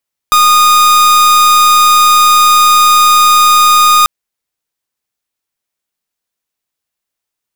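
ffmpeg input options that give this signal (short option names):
-f lavfi -i "aevalsrc='0.473*(2*lt(mod(1230*t,1),0.44)-1)':d=3.74:s=44100"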